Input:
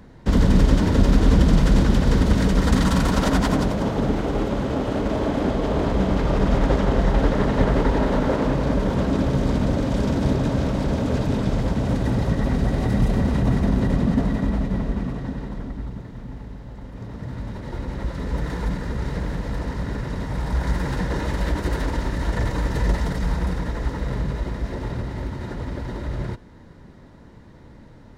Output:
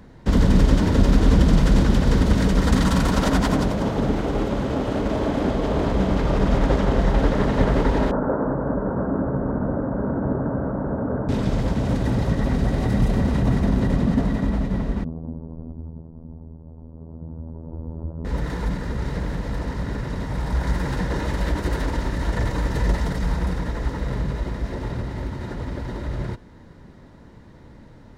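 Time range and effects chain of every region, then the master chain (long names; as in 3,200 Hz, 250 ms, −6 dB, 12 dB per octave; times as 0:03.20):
0:08.11–0:11.29: elliptic low-pass filter 1,500 Hz, stop band 50 dB + low-shelf EQ 84 Hz −10.5 dB
0:15.04–0:18.25: Gaussian smoothing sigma 11 samples + phases set to zero 80.9 Hz
whole clip: no processing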